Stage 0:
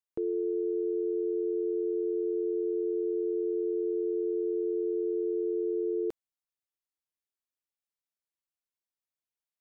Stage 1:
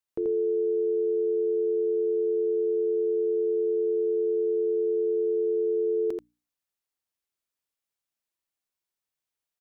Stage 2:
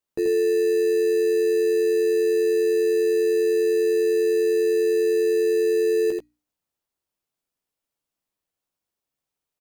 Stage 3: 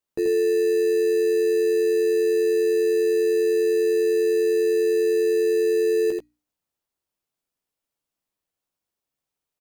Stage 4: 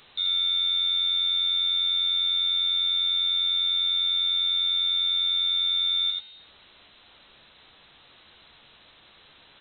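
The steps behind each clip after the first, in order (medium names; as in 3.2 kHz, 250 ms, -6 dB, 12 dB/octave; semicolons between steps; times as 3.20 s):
hum notches 60/120/180/240/300 Hz; delay 84 ms -4 dB; trim +3 dB
doubling 14 ms -5.5 dB; in parallel at -8 dB: sample-and-hold 20×
no audible change
jump at every zero crossing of -37 dBFS; frequency inversion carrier 4 kHz; trim -5 dB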